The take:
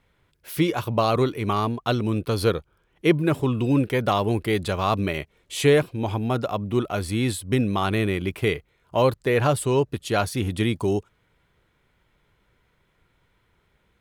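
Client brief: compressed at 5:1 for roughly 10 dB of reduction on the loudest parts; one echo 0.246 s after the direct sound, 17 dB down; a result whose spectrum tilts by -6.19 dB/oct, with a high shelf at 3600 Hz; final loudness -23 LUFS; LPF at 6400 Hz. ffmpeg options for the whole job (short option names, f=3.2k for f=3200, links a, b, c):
-af "lowpass=6.4k,highshelf=f=3.6k:g=-8,acompressor=threshold=-24dB:ratio=5,aecho=1:1:246:0.141,volume=6.5dB"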